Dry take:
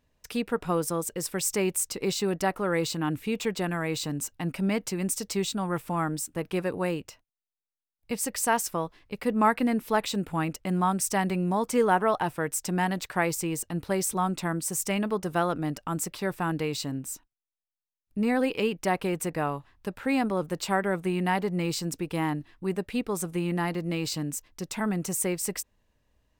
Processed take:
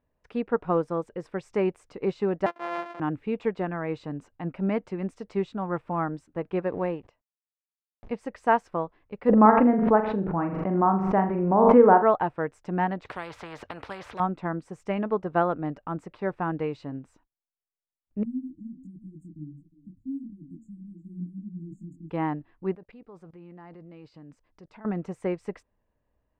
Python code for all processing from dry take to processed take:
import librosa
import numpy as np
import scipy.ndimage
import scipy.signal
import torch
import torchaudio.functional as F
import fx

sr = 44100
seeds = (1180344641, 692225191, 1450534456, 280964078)

y = fx.chain(x, sr, fx.sample_sort(block=128),
    fx.highpass(hz=580.0, slope=12), at=(2.46, 3.0))
y = fx.chain(y, sr, fx.law_mismatch(coded='A'),
    fx.peak_eq(hz=1400.0, db=-6.0, octaves=0.23),
    fx.pre_swell(db_per_s=69.0), at=(6.67, 8.12))
y = fx.chain(y, sr, fx.lowpass(hz=1500.0, slope=12),
    fx.room_flutter(wall_m=7.1, rt60_s=0.38),
    fx.pre_swell(db_per_s=20.0), at=(9.29, 12.03))
y = fx.chain(y, sr, fx.highpass(hz=72.0, slope=12),
    fx.spectral_comp(ratio=4.0), at=(13.05, 14.2))
y = fx.chain(y, sr, fx.brickwall_bandstop(low_hz=330.0, high_hz=6600.0),
    fx.echo_single(ms=360, db=-16.5),
    fx.detune_double(cents=48), at=(18.23, 22.1))
y = fx.chain(y, sr, fx.peak_eq(hz=4800.0, db=7.5, octaves=0.26),
    fx.level_steps(step_db=21), at=(22.75, 24.85))
y = scipy.signal.sosfilt(scipy.signal.butter(2, 1800.0, 'lowpass', fs=sr, output='sos'), y)
y = fx.peak_eq(y, sr, hz=620.0, db=4.0, octaves=2.1)
y = fx.upward_expand(y, sr, threshold_db=-33.0, expansion=1.5)
y = y * librosa.db_to_amplitude(3.5)